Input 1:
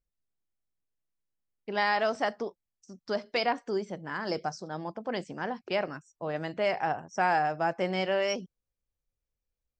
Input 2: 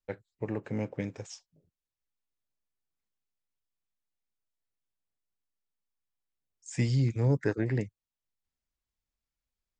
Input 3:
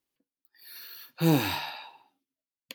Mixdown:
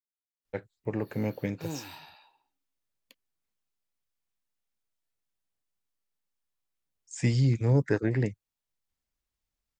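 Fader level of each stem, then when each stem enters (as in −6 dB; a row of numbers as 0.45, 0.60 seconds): muted, +2.5 dB, −15.0 dB; muted, 0.45 s, 0.40 s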